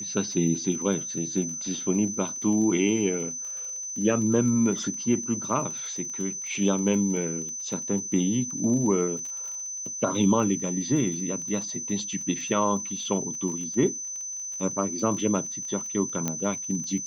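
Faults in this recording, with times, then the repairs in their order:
crackle 26 per s -34 dBFS
whine 6.1 kHz -32 dBFS
16.28 s: pop -12 dBFS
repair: de-click; band-stop 6.1 kHz, Q 30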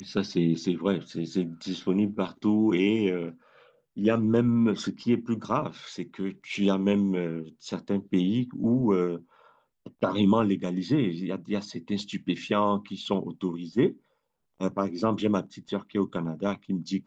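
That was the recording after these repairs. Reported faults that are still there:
nothing left

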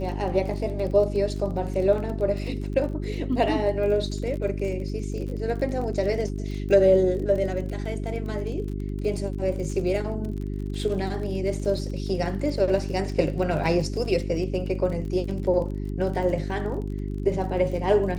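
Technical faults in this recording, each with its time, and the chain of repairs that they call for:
crackle 31 per s -33 dBFS
hum 50 Hz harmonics 8 -30 dBFS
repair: de-click; de-hum 50 Hz, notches 8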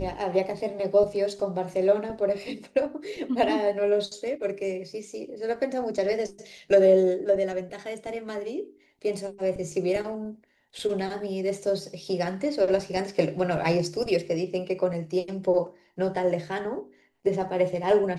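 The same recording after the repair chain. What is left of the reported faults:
nothing left

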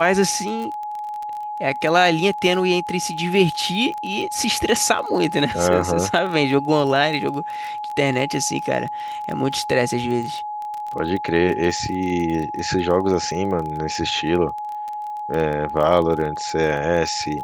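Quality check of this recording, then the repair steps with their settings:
crackle 22 per s -26 dBFS
whine 840 Hz -26 dBFS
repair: de-click; band-stop 840 Hz, Q 30

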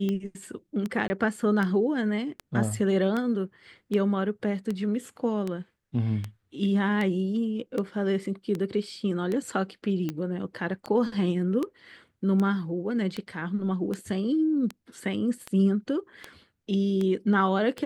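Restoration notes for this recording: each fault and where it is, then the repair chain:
tick 78 rpm -18 dBFS
1.08–1.10 s: dropout 20 ms
10.10 s: pop -23 dBFS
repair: de-click; interpolate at 1.08 s, 20 ms

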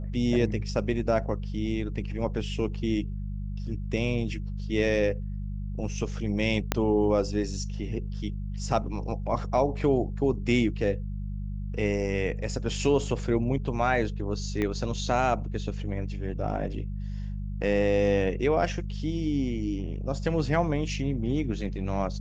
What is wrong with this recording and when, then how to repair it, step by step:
hum 50 Hz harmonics 4 -33 dBFS
6.72 s: pop -8 dBFS
14.62 s: pop -17 dBFS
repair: de-click; de-hum 50 Hz, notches 4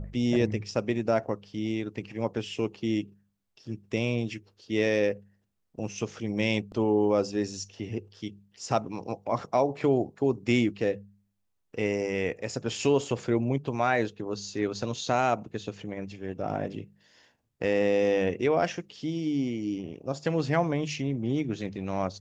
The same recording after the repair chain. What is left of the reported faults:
6.72 s: pop
14.62 s: pop

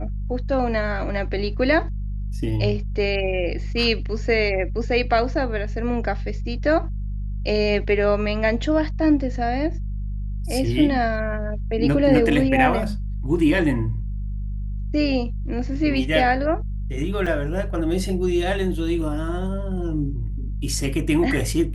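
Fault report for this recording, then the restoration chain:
hum 50 Hz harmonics 4 -27 dBFS
17.26–17.27 s: dropout 5.2 ms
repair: de-hum 50 Hz, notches 4; interpolate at 17.26 s, 5.2 ms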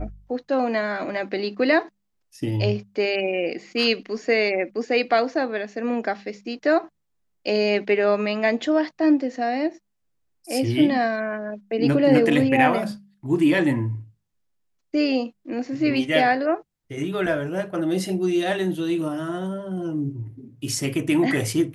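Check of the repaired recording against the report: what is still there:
nothing left

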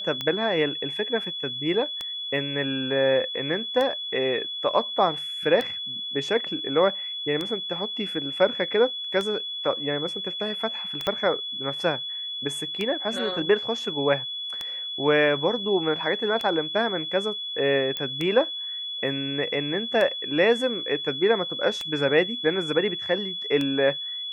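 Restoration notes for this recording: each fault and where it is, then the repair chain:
tick 33 1/3 rpm -15 dBFS
whine 3.4 kHz -30 dBFS
11.07 s: pop -12 dBFS
17.97 s: pop -15 dBFS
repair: de-click; band-stop 3.4 kHz, Q 30

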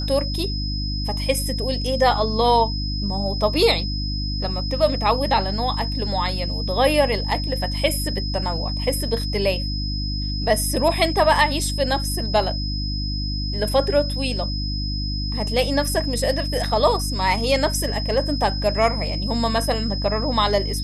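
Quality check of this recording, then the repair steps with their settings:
hum 50 Hz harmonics 6 -26 dBFS
whine 5.1 kHz -29 dBFS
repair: band-stop 5.1 kHz, Q 30; de-hum 50 Hz, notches 6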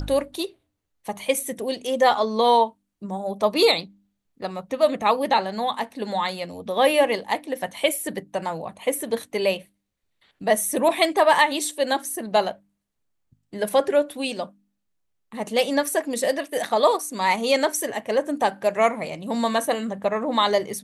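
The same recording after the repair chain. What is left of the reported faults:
nothing left

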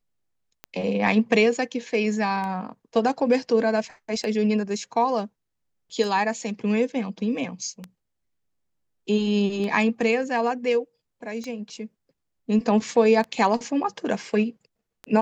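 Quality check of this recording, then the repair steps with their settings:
tick 33 1/3 rpm -20 dBFS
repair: de-click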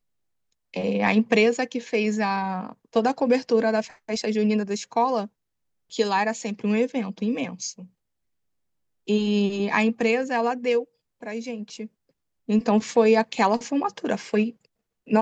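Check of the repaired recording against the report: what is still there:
nothing left

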